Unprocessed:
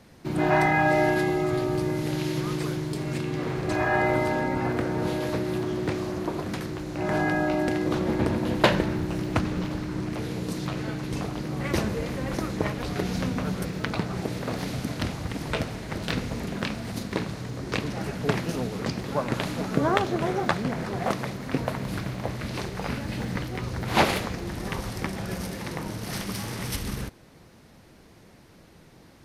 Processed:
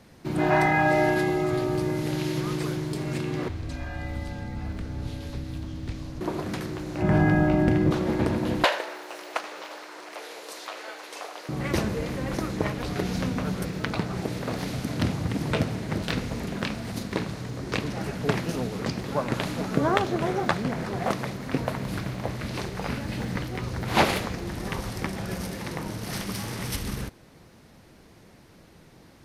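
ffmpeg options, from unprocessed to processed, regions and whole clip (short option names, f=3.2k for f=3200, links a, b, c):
-filter_complex "[0:a]asettb=1/sr,asplit=3[a][b][c];[a]atrim=end=3.484[d];[b]atrim=start=3.48:end=6.21,asetpts=PTS-STARTPTS,afade=t=in:d=0.004:c=qsin,afade=t=out:st=2.726:d=0.004:c=qsin,highshelf=f=5.3k:g=-10.5,afreqshift=-50,acrossover=split=160|3000[e][f][g];[f]acompressor=threshold=-45dB:ratio=3:attack=3.2:release=140:knee=2.83:detection=peak[h];[e][h][g]amix=inputs=3:normalize=0[i];[c]atrim=start=6.206[j];[d][i]acrossfade=d=0.004:c1=hsin:c2=qsin[k];[k][j]acrossfade=d=0.004:c1=qsin:c2=hsin,asettb=1/sr,asplit=3[l][m][n];[l]atrim=end=7.024[o];[m]atrim=start=7.02:end=7.91,asetpts=PTS-STARTPTS,afade=t=in:d=0.004:c=qsin,afade=t=out:st=0.886:d=0.004:c=qsin,bass=f=250:g=12,treble=f=4k:g=-8,aeval=exprs='sgn(val(0))*max(abs(val(0))-0.00398,0)':c=same,bandreject=f=4k:w=18[p];[n]atrim=start=7.906[q];[o][p]acrossfade=d=0.004:c1=hsin:c2=qsin[r];[r][q]acrossfade=d=0.004:c1=qsin:c2=hsin,asettb=1/sr,asplit=3[s][t][u];[s]atrim=end=8.644[v];[t]atrim=start=8.64:end=11.49,asetpts=PTS-STARTPTS,afade=t=in:d=0.004:c=qsin,afade=t=out:st=2.846:d=0.004:c=qsin,highpass=f=530:w=0.5412,highpass=f=530:w=1.3066,aecho=1:1:79:0.168,atrim=end_sample=125685[w];[u]atrim=start=11.486[x];[v][w]acrossfade=d=0.004:c1=hsin:c2=qsin[y];[y][x]acrossfade=d=0.004:c1=qsin:c2=hsin,asettb=1/sr,asplit=3[z][aa][ab];[z]atrim=end=14.934[ac];[aa]atrim=start=14.93:end=16.02,asetpts=PTS-STARTPTS,afade=t=in:d=0.004:c=qsin,afade=t=out:st=1.086:d=0.004:c=qsin,highpass=93,lowshelf=f=340:g=7.5[ad];[ab]atrim=start=16.016[ae];[ac][ad]acrossfade=d=0.004:c1=hsin:c2=qsin[af];[af][ae]acrossfade=d=0.004:c1=qsin:c2=hsin"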